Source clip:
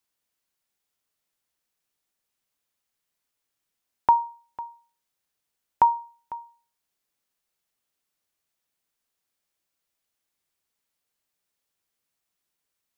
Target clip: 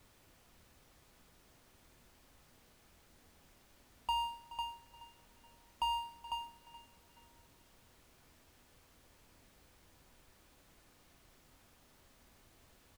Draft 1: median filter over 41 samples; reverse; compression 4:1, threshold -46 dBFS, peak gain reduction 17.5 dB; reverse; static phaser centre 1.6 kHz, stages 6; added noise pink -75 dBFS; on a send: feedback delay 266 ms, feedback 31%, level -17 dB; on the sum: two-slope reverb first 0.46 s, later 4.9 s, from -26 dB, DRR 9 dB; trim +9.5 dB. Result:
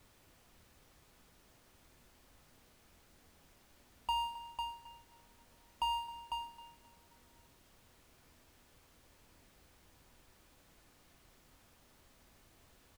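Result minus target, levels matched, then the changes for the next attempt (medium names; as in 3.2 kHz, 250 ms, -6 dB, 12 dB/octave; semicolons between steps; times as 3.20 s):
echo 159 ms early
change: feedback delay 425 ms, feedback 31%, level -17 dB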